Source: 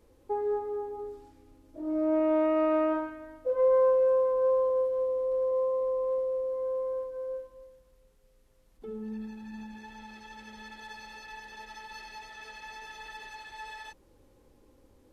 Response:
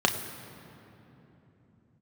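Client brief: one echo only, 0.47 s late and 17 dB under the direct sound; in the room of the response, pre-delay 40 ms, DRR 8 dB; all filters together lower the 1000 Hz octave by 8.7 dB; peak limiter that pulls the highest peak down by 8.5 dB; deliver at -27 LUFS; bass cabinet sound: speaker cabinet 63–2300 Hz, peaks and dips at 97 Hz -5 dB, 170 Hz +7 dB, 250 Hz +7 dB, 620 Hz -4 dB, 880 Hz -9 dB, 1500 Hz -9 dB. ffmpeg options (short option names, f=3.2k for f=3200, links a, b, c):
-filter_complex "[0:a]equalizer=f=1k:t=o:g=-3.5,alimiter=level_in=2.5dB:limit=-24dB:level=0:latency=1,volume=-2.5dB,aecho=1:1:470:0.141,asplit=2[a][b];[1:a]atrim=start_sample=2205,adelay=40[c];[b][c]afir=irnorm=-1:irlink=0,volume=-22dB[d];[a][d]amix=inputs=2:normalize=0,highpass=f=63:w=0.5412,highpass=f=63:w=1.3066,equalizer=f=97:t=q:w=4:g=-5,equalizer=f=170:t=q:w=4:g=7,equalizer=f=250:t=q:w=4:g=7,equalizer=f=620:t=q:w=4:g=-4,equalizer=f=880:t=q:w=4:g=-9,equalizer=f=1.5k:t=q:w=4:g=-9,lowpass=f=2.3k:w=0.5412,lowpass=f=2.3k:w=1.3066,volume=8.5dB"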